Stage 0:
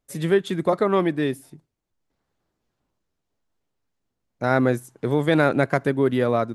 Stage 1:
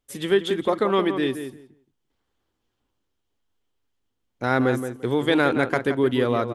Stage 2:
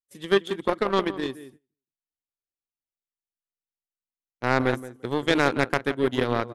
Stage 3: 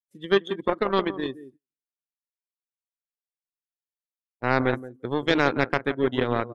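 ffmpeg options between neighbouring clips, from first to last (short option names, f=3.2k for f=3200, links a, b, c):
-filter_complex "[0:a]equalizer=f=160:t=o:w=0.33:g=-12,equalizer=f=630:t=o:w=0.33:g=-6,equalizer=f=3.15k:t=o:w=0.33:g=8,asplit=2[a][b];[b]adelay=172,lowpass=f=2.1k:p=1,volume=-8.5dB,asplit=2[c][d];[d]adelay=172,lowpass=f=2.1k:p=1,volume=0.18,asplit=2[e][f];[f]adelay=172,lowpass=f=2.1k:p=1,volume=0.18[g];[a][c][e][g]amix=inputs=4:normalize=0"
-af "aeval=exprs='0.631*(cos(1*acos(clip(val(0)/0.631,-1,1)))-cos(1*PI/2))+0.02*(cos(5*acos(clip(val(0)/0.631,-1,1)))-cos(5*PI/2))+0.0794*(cos(7*acos(clip(val(0)/0.631,-1,1)))-cos(7*PI/2))':c=same,agate=range=-20dB:threshold=-50dB:ratio=16:detection=peak"
-af "afftdn=nr=19:nf=-40"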